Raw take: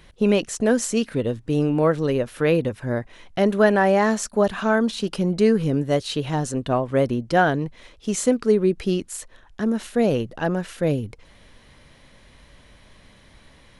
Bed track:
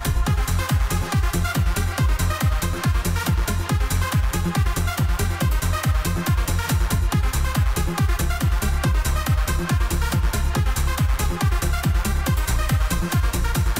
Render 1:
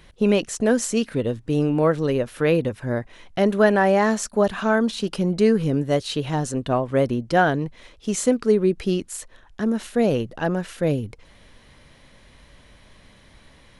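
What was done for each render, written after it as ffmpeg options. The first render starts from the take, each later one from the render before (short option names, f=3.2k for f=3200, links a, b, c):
-af anull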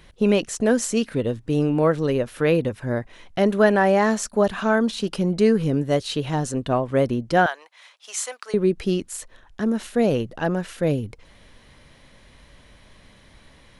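-filter_complex "[0:a]asettb=1/sr,asplit=3[a][b][c];[a]atrim=end=7.464[d];[b]atrim=start=7.46:end=8.54,asetpts=PTS-STARTPTS,afade=t=in:d=0.004:c=qsin,afade=t=out:st=1.076:d=0.004:c=qsin,highpass=f=790:w=0.5412,highpass=f=790:w=1.3066[e];[c]atrim=start=8.536[f];[d][e]acrossfade=d=0.004:c1=hsin:c2=qsin[g];[g][f]acrossfade=d=0.004:c1=qsin:c2=hsin"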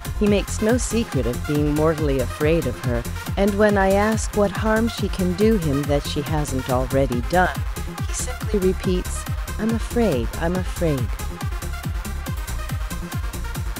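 -filter_complex "[1:a]volume=-6.5dB[a];[0:a][a]amix=inputs=2:normalize=0"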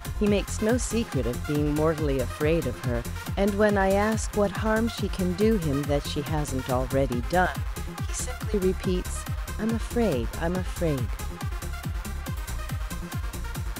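-af "volume=-5dB"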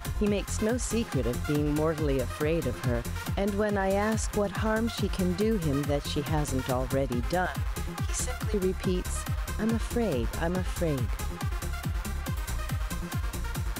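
-af "alimiter=limit=-17.5dB:level=0:latency=1:release=209"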